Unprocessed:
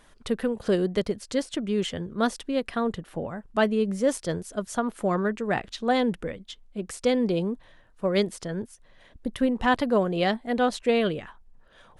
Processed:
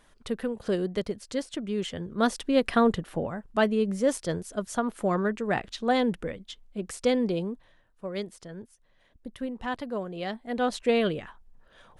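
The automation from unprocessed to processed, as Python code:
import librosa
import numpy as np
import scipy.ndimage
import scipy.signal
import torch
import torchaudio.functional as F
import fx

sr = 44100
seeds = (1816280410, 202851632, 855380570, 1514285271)

y = fx.gain(x, sr, db=fx.line((1.87, -4.0), (2.75, 6.0), (3.5, -1.0), (7.13, -1.0), (8.04, -10.0), (10.22, -10.0), (10.78, -1.0)))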